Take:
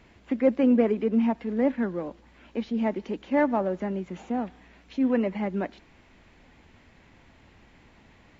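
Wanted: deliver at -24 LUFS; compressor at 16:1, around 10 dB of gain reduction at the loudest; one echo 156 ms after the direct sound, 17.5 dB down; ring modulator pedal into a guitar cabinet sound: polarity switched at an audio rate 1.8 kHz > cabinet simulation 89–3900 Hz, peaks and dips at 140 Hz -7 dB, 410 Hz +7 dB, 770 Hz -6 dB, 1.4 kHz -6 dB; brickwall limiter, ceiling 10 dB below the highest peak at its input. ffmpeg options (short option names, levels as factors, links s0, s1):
-af "acompressor=threshold=0.0501:ratio=16,alimiter=level_in=1.78:limit=0.0631:level=0:latency=1,volume=0.562,aecho=1:1:156:0.133,aeval=exprs='val(0)*sgn(sin(2*PI*1800*n/s))':c=same,highpass=89,equalizer=f=140:t=q:w=4:g=-7,equalizer=f=410:t=q:w=4:g=7,equalizer=f=770:t=q:w=4:g=-6,equalizer=f=1400:t=q:w=4:g=-6,lowpass=f=3900:w=0.5412,lowpass=f=3900:w=1.3066,volume=4.73"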